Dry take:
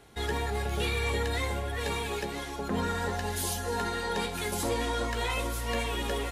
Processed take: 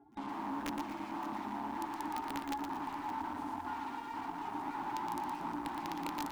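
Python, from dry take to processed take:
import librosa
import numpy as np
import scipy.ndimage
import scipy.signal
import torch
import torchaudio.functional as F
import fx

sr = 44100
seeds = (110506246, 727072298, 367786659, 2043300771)

y = fx.spec_expand(x, sr, power=2.2)
y = fx.rider(y, sr, range_db=10, speed_s=0.5)
y = (np.mod(10.0 ** (29.5 / 20.0) * y + 1.0, 2.0) - 1.0) / 10.0 ** (29.5 / 20.0)
y = fx.double_bandpass(y, sr, hz=510.0, octaves=1.6)
y = fx.cheby_harmonics(y, sr, harmonics=(6,), levels_db=(-30,), full_scale_db=-32.5)
y = (np.mod(10.0 ** (34.0 / 20.0) * y + 1.0, 2.0) - 1.0) / 10.0 ** (34.0 / 20.0)
y = y + 10.0 ** (-13.5 / 20.0) * np.pad(y, (int(568 * sr / 1000.0), 0))[:len(y)]
y = fx.echo_crushed(y, sr, ms=117, feedback_pct=35, bits=11, wet_db=-6)
y = y * 10.0 ** (4.5 / 20.0)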